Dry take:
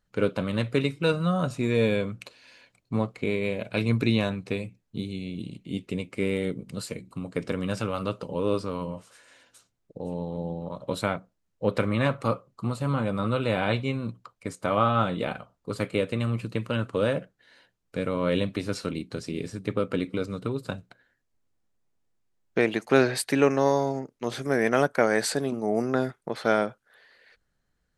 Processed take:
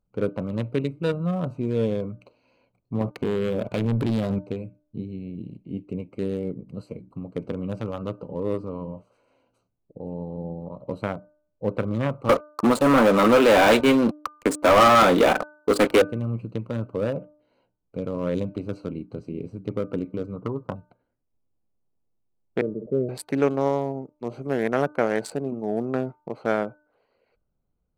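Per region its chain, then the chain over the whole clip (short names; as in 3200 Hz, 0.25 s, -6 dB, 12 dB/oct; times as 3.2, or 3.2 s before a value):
3.01–4.39 HPF 66 Hz 6 dB/oct + sample leveller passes 3 + compressor, threshold -20 dBFS
12.29–16.02 HPF 250 Hz 24 dB/oct + sample leveller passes 5
20.36–20.76 synth low-pass 1100 Hz, resonance Q 3.4 + expander -42 dBFS
22.61–23.09 rippled Chebyshev low-pass 620 Hz, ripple 6 dB + sustainer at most 120 dB/s
whole clip: Wiener smoothing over 25 samples; de-hum 300.2 Hz, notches 5; dynamic EQ 4500 Hz, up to -4 dB, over -45 dBFS, Q 0.7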